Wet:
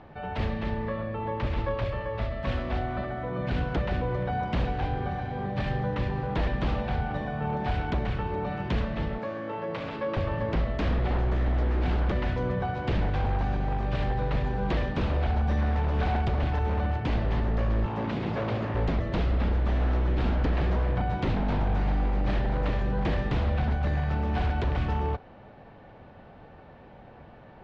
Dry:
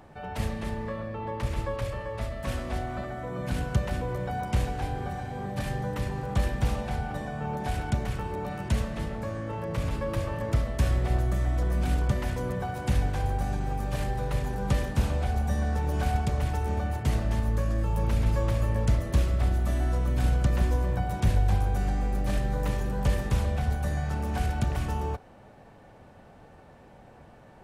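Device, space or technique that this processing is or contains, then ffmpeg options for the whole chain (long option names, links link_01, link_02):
synthesiser wavefolder: -filter_complex "[0:a]aeval=exprs='0.075*(abs(mod(val(0)/0.075+3,4)-2)-1)':channel_layout=same,lowpass=frequency=4000:width=0.5412,lowpass=frequency=4000:width=1.3066,asettb=1/sr,asplit=3[link_01][link_02][link_03];[link_01]atrim=end=9.184[link_04];[link_02]atrim=start=9.18:end=10.17,asetpts=PTS-STARTPTS,afade=type=in:duration=0.004:curve=qsin,afade=type=out:start_time=0.986:duration=0.004:curve=qsin,highpass=240[link_05];[link_03]atrim=start=10.166[link_06];[link_04][link_05]acrossfade=duration=0.004:curve1=hsin:curve2=qsin[link_07];[link_07][link_06]acrossfade=duration=0.004:curve1=qsin:curve2=hsin,asettb=1/sr,asplit=3[link_08][link_09][link_10];[link_08]atrim=end=17.864[link_11];[link_09]atrim=start=17.86:end=18.75,asetpts=PTS-STARTPTS,afade=type=in:duration=0.004:curve=qsin,afade=type=out:start_time=0.886:duration=0.004:curve=qsin,highpass=frequency=100:width=0.5412,highpass=frequency=100:width=1.3066[link_12];[link_10]atrim=start=18.746[link_13];[link_11][link_12]acrossfade=duration=0.004:curve1=hsin:curve2=qsin[link_14];[link_14][link_13]acrossfade=duration=0.004:curve1=qsin:curve2=hsin,volume=2.5dB"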